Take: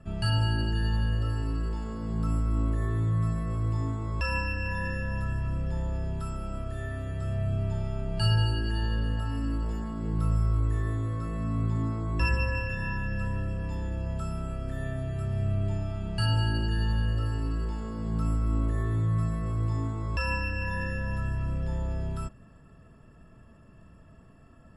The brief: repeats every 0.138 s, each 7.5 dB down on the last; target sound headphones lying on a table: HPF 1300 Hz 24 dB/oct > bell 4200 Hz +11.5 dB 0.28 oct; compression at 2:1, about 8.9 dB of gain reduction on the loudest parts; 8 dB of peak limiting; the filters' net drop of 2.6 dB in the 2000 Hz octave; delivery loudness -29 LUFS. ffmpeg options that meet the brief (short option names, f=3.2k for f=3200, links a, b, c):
-af "equalizer=f=2k:t=o:g=-3.5,acompressor=threshold=-38dB:ratio=2,alimiter=level_in=7.5dB:limit=-24dB:level=0:latency=1,volume=-7.5dB,highpass=f=1.3k:w=0.5412,highpass=f=1.3k:w=1.3066,equalizer=f=4.2k:t=o:w=0.28:g=11.5,aecho=1:1:138|276|414|552|690:0.422|0.177|0.0744|0.0312|0.0131,volume=21.5dB"